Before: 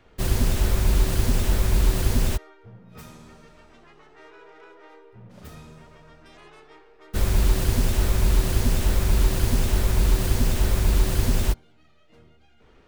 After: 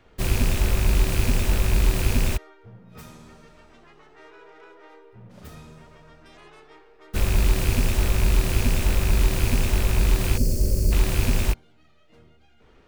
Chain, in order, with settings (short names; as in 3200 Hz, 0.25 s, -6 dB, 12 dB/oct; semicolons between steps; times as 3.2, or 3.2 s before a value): rattling part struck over -24 dBFS, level -21 dBFS; spectral gain 10.37–10.92, 630–4200 Hz -19 dB